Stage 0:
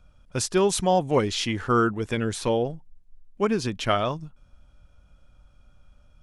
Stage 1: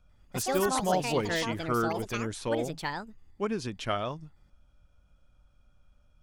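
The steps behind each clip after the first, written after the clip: ever faster or slower copies 96 ms, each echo +6 st, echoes 2; trim -7.5 dB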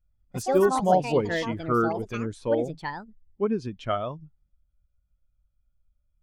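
spectral contrast expander 1.5:1; trim +5 dB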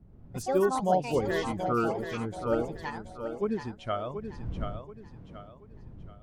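wind noise 130 Hz -40 dBFS; on a send: thinning echo 730 ms, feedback 37%, high-pass 180 Hz, level -7.5 dB; on the sum: trim -4.5 dB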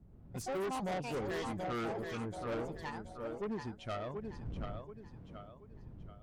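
valve stage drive 31 dB, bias 0.3; trim -3 dB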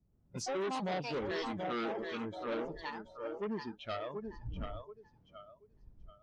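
spectral noise reduction 16 dB; resonant low-pass 5.7 kHz, resonance Q 2.7; trim +1 dB

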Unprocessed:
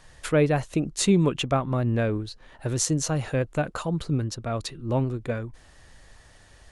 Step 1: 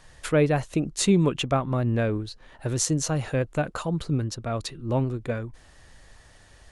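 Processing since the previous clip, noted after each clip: no audible change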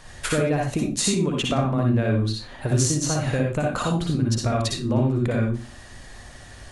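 compression, threshold -29 dBFS, peak gain reduction 13 dB; reverberation RT60 0.30 s, pre-delay 54 ms, DRR -0.5 dB; trim +6.5 dB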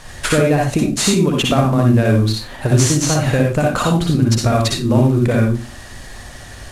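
CVSD coder 64 kbps; trim +8 dB

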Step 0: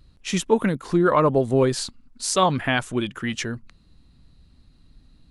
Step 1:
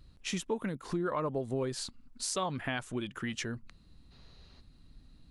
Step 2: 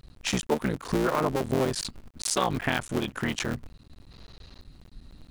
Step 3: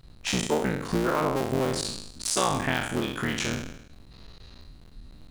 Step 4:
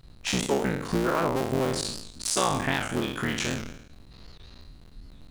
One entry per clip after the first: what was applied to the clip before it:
time-frequency box 4.12–4.60 s, 350–6900 Hz +10 dB; compression 2.5:1, threshold -32 dBFS, peak gain reduction 13 dB; trim -3.5 dB
cycle switcher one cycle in 3, muted; trim +9 dB
spectral sustain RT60 0.80 s; trim -2 dB
warped record 78 rpm, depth 160 cents

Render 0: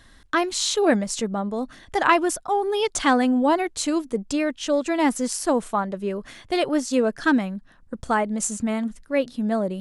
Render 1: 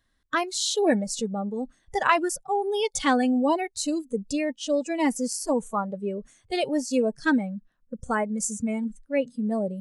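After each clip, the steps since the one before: band-stop 870 Hz, Q 16; spectral noise reduction 18 dB; trim -2.5 dB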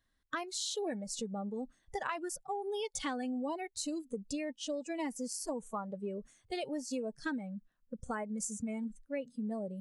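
compression 6:1, threshold -27 dBFS, peak gain reduction 11 dB; trim -7 dB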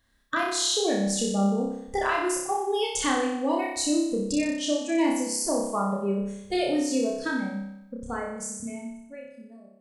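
fade out at the end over 3.17 s; flutter echo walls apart 5.2 m, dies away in 0.83 s; trim +8.5 dB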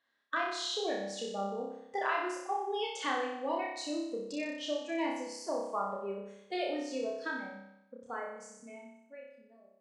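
band-pass 440–3700 Hz; trim -5.5 dB

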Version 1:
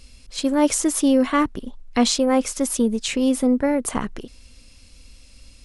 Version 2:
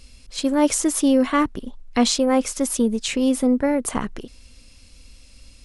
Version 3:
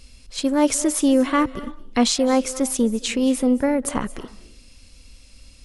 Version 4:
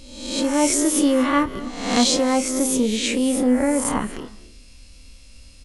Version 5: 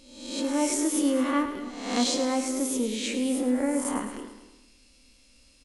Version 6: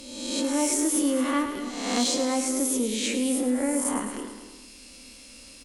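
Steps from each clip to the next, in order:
no audible change
reverberation RT60 0.45 s, pre-delay 181 ms, DRR 16 dB
reverse spectral sustain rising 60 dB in 0.81 s; doubling 28 ms -11 dB; trim -1.5 dB
resonant low shelf 190 Hz -8.5 dB, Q 1.5; on a send: feedback delay 107 ms, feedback 51%, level -10.5 dB; on the sum: trim -8.5 dB
treble shelf 8.4 kHz +9.5 dB; Chebyshev shaper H 5 -25 dB, 7 -43 dB, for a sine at -9.5 dBFS; three bands compressed up and down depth 40%; trim -1 dB

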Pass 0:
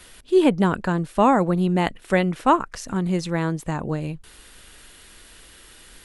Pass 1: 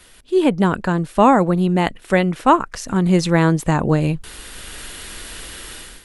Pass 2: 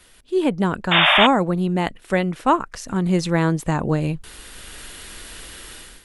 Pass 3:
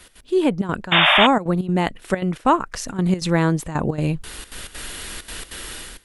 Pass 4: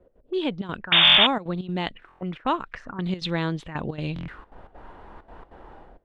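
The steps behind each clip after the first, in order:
level rider gain up to 14.5 dB; trim -1 dB
painted sound noise, 0.91–1.27 s, 570–3700 Hz -11 dBFS; trim -4 dB
in parallel at +2 dB: compression, threshold -25 dBFS, peak gain reduction 14.5 dB; on the sum: trance gate "x.xxxxxx.x" 196 bpm -12 dB; trim -2 dB
buffer glitch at 1.03/2.07/4.14 s, samples 1024, times 5; touch-sensitive low-pass 490–3600 Hz up, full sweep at -18.5 dBFS; trim -8.5 dB

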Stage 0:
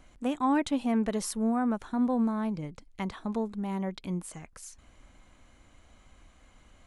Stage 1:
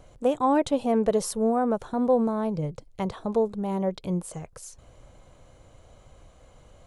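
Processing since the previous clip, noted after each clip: graphic EQ 125/250/500/2000 Hz +10/-7/+11/-6 dB; trim +3 dB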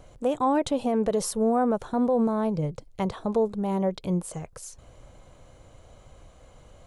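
peak limiter -17.5 dBFS, peak gain reduction 5.5 dB; trim +1.5 dB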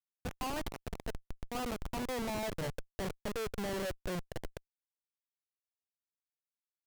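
rattle on loud lows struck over -34 dBFS, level -34 dBFS; band-pass sweep 2.1 kHz -> 530 Hz, 1.23–2.83 s; Schmitt trigger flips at -37 dBFS; trim +1.5 dB

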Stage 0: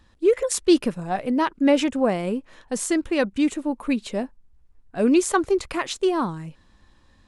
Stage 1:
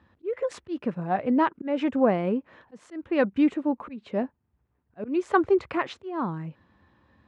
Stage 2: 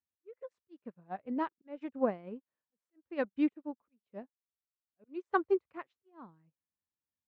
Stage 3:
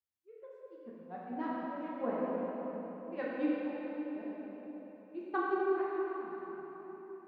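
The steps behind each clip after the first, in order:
low-pass 2.1 kHz 12 dB/octave; slow attack 309 ms; high-pass 77 Hz 24 dB/octave
upward expansion 2.5:1, over -41 dBFS; trim -6.5 dB
reverberation RT60 4.6 s, pre-delay 3 ms, DRR -8 dB; trim -8 dB

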